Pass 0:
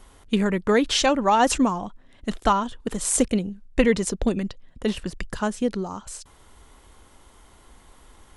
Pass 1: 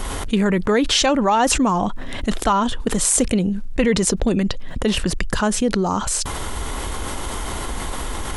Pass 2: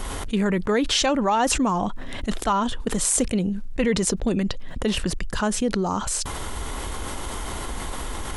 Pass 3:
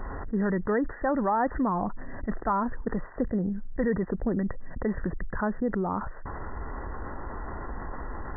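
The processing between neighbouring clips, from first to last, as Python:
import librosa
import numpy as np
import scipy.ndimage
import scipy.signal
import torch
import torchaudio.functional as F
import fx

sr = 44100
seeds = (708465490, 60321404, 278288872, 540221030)

y1 = fx.env_flatten(x, sr, amount_pct=70)
y1 = y1 * 10.0 ** (-1.0 / 20.0)
y2 = fx.attack_slew(y1, sr, db_per_s=350.0)
y2 = y2 * 10.0 ** (-4.0 / 20.0)
y3 = fx.brickwall_lowpass(y2, sr, high_hz=2000.0)
y3 = y3 * 10.0 ** (-4.5 / 20.0)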